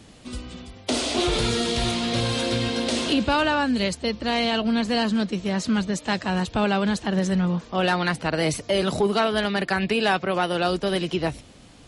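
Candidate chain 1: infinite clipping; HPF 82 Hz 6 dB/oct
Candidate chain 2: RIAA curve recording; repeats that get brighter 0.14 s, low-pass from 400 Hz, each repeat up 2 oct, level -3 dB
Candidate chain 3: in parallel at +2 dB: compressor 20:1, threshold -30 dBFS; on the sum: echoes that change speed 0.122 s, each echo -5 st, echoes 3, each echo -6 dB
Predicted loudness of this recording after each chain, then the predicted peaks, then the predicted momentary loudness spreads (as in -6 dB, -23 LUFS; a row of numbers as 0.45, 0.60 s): -23.5, -21.0, -20.0 LUFS; -18.0, -5.5, -6.5 dBFS; 1, 7, 4 LU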